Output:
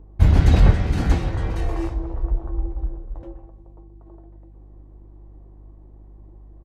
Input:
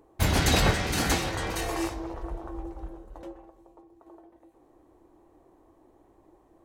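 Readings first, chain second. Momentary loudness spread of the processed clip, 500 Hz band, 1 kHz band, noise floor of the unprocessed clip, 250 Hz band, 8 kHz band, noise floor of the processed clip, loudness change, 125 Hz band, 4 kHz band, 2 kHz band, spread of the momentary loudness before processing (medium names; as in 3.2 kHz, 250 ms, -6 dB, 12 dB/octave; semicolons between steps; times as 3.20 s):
17 LU, +0.5 dB, -2.0 dB, -62 dBFS, +4.5 dB, -13.5 dB, -45 dBFS, +6.0 dB, +11.0 dB, -8.5 dB, -5.0 dB, 22 LU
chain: hum 50 Hz, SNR 27 dB; RIAA curve playback; resampled via 32 kHz; trim -2.5 dB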